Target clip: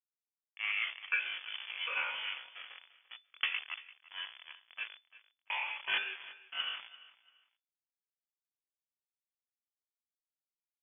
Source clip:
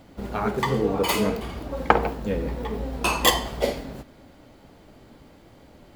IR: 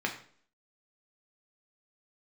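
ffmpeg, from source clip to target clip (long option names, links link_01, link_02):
-filter_complex "[0:a]highpass=1300,aresample=16000,aeval=exprs='(mod(4.22*val(0)+1,2)-1)/4.22':channel_layout=same,aresample=44100,dynaudnorm=framelen=100:gausssize=5:maxgain=15dB,acrusher=bits=3:mix=0:aa=0.000001,atempo=0.55,lowpass=frequency=3000:width_type=q:width=0.5098,lowpass=frequency=3000:width_type=q:width=0.6013,lowpass=frequency=3000:width_type=q:width=0.9,lowpass=frequency=3000:width_type=q:width=2.563,afreqshift=-3500,aderivative,aecho=1:1:342|684:0.119|0.0297,asplit=2[link_01][link_02];[1:a]atrim=start_sample=2205,asetrate=88200,aresample=44100[link_03];[link_02][link_03]afir=irnorm=-1:irlink=0,volume=-14.5dB[link_04];[link_01][link_04]amix=inputs=2:normalize=0,volume=-6dB"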